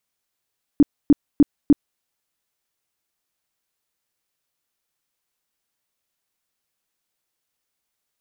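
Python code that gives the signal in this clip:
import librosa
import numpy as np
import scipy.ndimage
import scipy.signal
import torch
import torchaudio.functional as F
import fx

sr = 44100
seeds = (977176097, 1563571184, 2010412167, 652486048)

y = fx.tone_burst(sr, hz=289.0, cycles=8, every_s=0.3, bursts=4, level_db=-7.5)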